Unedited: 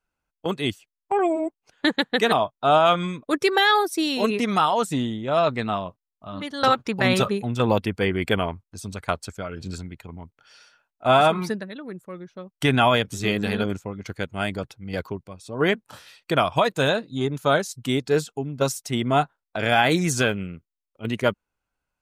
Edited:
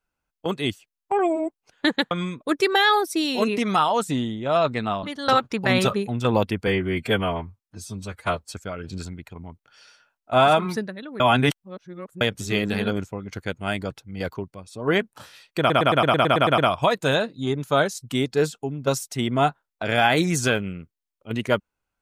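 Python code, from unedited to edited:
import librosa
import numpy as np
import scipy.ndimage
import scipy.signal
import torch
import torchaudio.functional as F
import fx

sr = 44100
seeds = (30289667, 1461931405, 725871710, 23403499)

y = fx.edit(x, sr, fx.cut(start_s=2.11, length_s=0.82),
    fx.cut(start_s=5.85, length_s=0.53),
    fx.stretch_span(start_s=8.02, length_s=1.24, factor=1.5),
    fx.reverse_span(start_s=11.93, length_s=1.01),
    fx.stutter(start_s=16.32, slice_s=0.11, count=10), tone=tone)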